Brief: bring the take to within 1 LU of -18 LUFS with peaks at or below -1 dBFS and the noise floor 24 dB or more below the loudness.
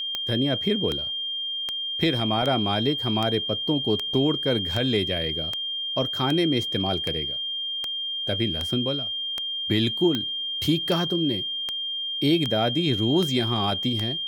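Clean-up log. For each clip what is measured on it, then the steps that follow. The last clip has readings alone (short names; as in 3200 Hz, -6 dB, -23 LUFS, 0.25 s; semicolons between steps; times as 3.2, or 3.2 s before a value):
clicks 19; steady tone 3200 Hz; tone level -27 dBFS; loudness -24.0 LUFS; peak -9.0 dBFS; loudness target -18.0 LUFS
-> de-click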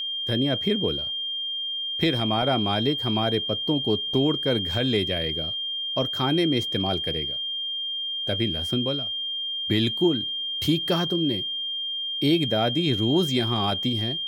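clicks 0; steady tone 3200 Hz; tone level -27 dBFS
-> notch 3200 Hz, Q 30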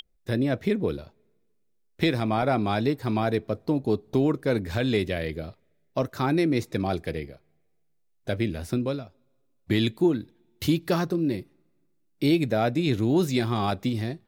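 steady tone none; loudness -26.5 LUFS; peak -10.0 dBFS; loudness target -18.0 LUFS
-> gain +8.5 dB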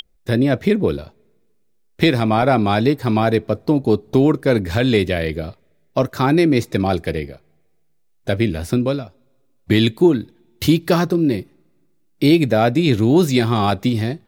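loudness -18.0 LUFS; peak -1.5 dBFS; noise floor -59 dBFS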